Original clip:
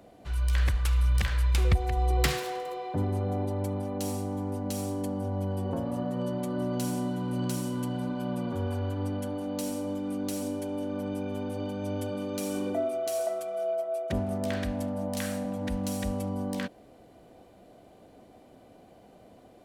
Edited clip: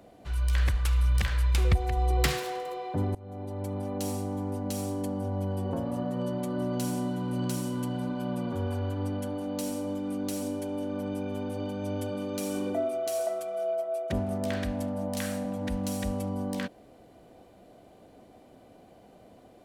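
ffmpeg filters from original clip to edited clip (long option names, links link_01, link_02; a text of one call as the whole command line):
ffmpeg -i in.wav -filter_complex "[0:a]asplit=2[link_01][link_02];[link_01]atrim=end=3.15,asetpts=PTS-STARTPTS,afade=type=out:start_time=3.146:duration=0.004:curve=hsin:silence=0.0749894[link_03];[link_02]atrim=start=3.15,asetpts=PTS-STARTPTS,afade=type=in:duration=0.74:silence=0.0749894[link_04];[link_03][link_04]concat=n=2:v=0:a=1" out.wav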